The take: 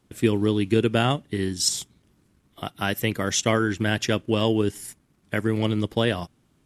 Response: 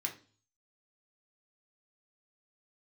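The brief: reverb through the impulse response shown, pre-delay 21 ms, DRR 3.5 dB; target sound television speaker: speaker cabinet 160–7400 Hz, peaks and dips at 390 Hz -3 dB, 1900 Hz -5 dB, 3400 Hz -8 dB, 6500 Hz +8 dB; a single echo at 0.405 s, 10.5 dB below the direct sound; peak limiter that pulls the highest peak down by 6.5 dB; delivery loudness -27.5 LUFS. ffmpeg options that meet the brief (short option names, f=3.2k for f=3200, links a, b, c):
-filter_complex "[0:a]alimiter=limit=-13dB:level=0:latency=1,aecho=1:1:405:0.299,asplit=2[a][b];[1:a]atrim=start_sample=2205,adelay=21[c];[b][c]afir=irnorm=-1:irlink=0,volume=-4.5dB[d];[a][d]amix=inputs=2:normalize=0,highpass=f=160:w=0.5412,highpass=f=160:w=1.3066,equalizer=f=390:t=q:w=4:g=-3,equalizer=f=1.9k:t=q:w=4:g=-5,equalizer=f=3.4k:t=q:w=4:g=-8,equalizer=f=6.5k:t=q:w=4:g=8,lowpass=f=7.4k:w=0.5412,lowpass=f=7.4k:w=1.3066,volume=-1.5dB"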